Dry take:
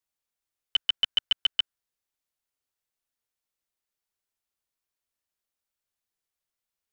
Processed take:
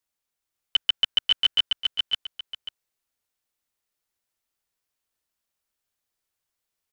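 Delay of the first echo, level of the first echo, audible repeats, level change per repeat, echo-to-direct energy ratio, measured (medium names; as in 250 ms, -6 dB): 541 ms, -3.5 dB, 2, -11.5 dB, -3.0 dB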